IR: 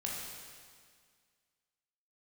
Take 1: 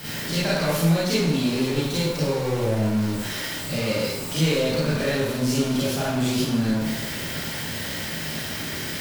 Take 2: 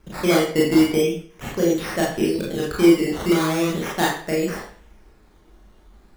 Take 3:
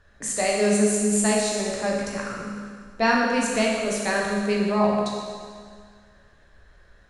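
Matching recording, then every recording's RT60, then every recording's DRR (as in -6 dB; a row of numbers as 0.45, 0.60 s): 3; 0.85, 0.45, 1.9 s; -9.0, -5.0, -3.5 dB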